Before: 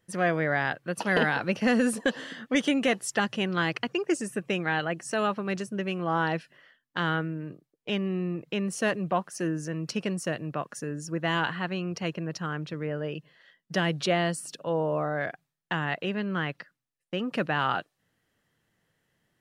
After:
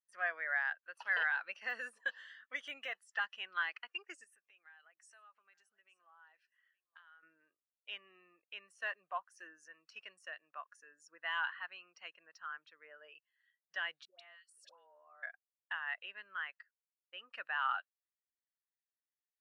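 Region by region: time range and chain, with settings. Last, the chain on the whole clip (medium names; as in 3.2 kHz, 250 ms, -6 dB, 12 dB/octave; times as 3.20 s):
4.24–7.23 s: compression 10:1, threshold -39 dBFS + delay 868 ms -16 dB
14.05–15.23 s: compression 16:1, threshold -33 dBFS + phase dispersion highs, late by 147 ms, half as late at 860 Hz
whole clip: de-esser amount 90%; Chebyshev high-pass 1.3 kHz, order 2; spectral contrast expander 1.5:1; trim -5 dB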